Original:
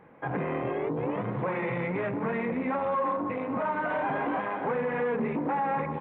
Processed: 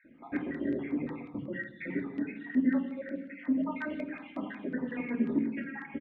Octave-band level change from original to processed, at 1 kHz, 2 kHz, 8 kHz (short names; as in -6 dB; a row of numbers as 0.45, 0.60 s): -18.5 dB, -6.0 dB, n/a